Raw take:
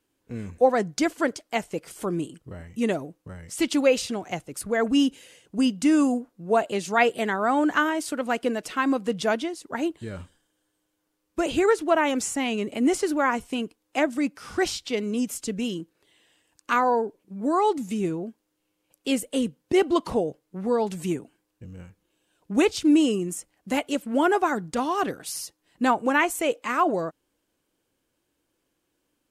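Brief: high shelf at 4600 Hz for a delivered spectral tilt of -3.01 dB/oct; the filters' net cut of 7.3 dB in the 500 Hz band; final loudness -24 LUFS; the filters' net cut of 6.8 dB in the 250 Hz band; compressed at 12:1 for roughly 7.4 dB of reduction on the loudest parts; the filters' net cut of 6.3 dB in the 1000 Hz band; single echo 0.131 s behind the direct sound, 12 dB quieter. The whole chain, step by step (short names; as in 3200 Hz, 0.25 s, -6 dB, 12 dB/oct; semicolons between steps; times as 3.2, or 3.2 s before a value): bell 250 Hz -6 dB; bell 500 Hz -6 dB; bell 1000 Hz -6 dB; high shelf 4600 Hz +4 dB; compressor 12:1, threshold -27 dBFS; echo 0.131 s -12 dB; gain +9 dB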